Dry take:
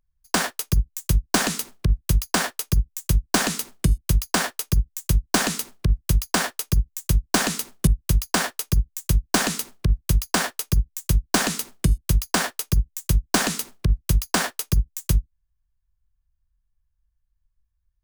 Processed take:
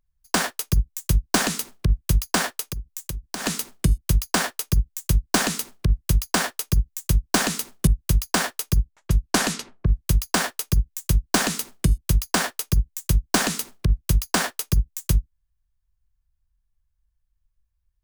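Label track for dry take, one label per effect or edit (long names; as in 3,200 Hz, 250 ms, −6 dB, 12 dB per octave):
2.600000	3.460000	downward compressor 12 to 1, threshold −26 dBFS
8.870000	10.060000	low-pass that shuts in the quiet parts closes to 810 Hz, open at −18 dBFS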